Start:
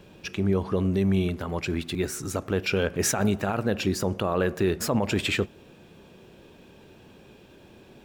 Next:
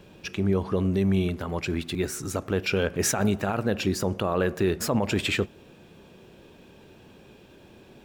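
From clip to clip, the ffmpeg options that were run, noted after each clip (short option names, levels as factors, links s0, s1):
-af anull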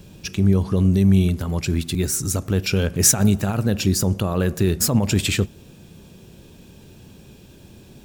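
-af "bass=f=250:g=12,treble=f=4000:g=14,volume=0.891"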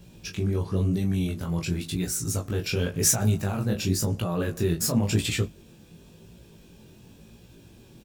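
-filter_complex "[0:a]acrusher=bits=11:mix=0:aa=0.000001,flanger=delay=16.5:depth=7.7:speed=0.94,asplit=2[s0][s1];[s1]adelay=18,volume=0.501[s2];[s0][s2]amix=inputs=2:normalize=0,volume=0.668"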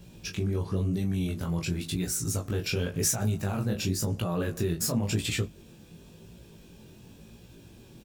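-af "acompressor=threshold=0.0447:ratio=2"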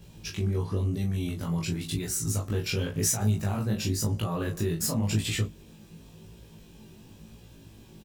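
-filter_complex "[0:a]asplit=2[s0][s1];[s1]adelay=19,volume=0.75[s2];[s0][s2]amix=inputs=2:normalize=0,volume=0.841"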